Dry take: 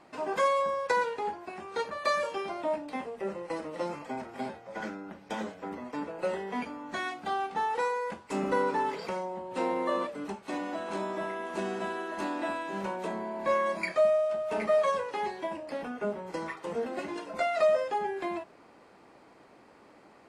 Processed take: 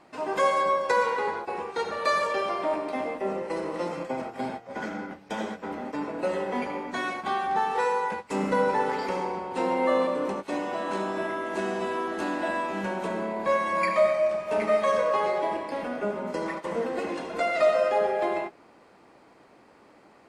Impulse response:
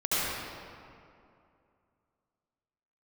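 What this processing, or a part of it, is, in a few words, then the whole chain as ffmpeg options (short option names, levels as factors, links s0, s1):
keyed gated reverb: -filter_complex "[0:a]asplit=3[s0][s1][s2];[1:a]atrim=start_sample=2205[s3];[s1][s3]afir=irnorm=-1:irlink=0[s4];[s2]apad=whole_len=894422[s5];[s4][s5]sidechaingate=range=0.0224:threshold=0.00794:ratio=16:detection=peak,volume=0.224[s6];[s0][s6]amix=inputs=2:normalize=0,volume=1.12"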